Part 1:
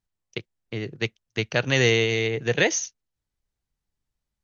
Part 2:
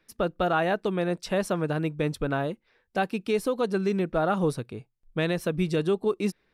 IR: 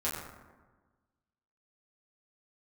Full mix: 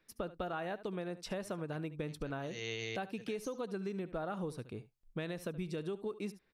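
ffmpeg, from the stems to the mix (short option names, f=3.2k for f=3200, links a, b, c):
-filter_complex "[0:a]highshelf=f=3.6k:g=8.5,adelay=700,volume=-14dB[a];[1:a]volume=-6dB,asplit=3[b][c][d];[c]volume=-17.5dB[e];[d]apad=whole_len=226290[f];[a][f]sidechaincompress=threshold=-49dB:ratio=5:attack=5.3:release=201[g];[e]aecho=0:1:72:1[h];[g][b][h]amix=inputs=3:normalize=0,acompressor=threshold=-36dB:ratio=6"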